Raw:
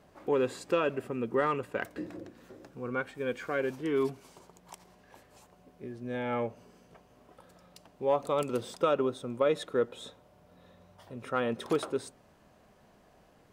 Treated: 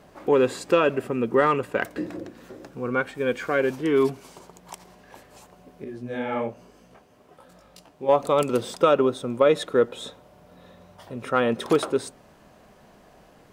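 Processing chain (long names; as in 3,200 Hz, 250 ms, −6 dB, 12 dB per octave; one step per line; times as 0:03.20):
parametric band 88 Hz −3.5 dB 0.77 octaves
0:05.84–0:08.09: micro pitch shift up and down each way 38 cents
level +8.5 dB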